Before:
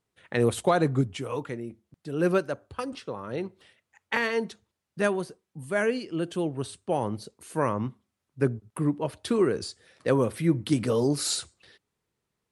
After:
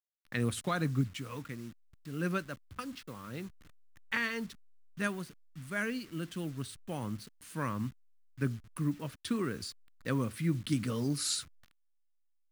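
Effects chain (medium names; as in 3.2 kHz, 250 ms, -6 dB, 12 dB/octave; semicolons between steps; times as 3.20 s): send-on-delta sampling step -44 dBFS; high-order bell 570 Hz -10.5 dB; trim -4.5 dB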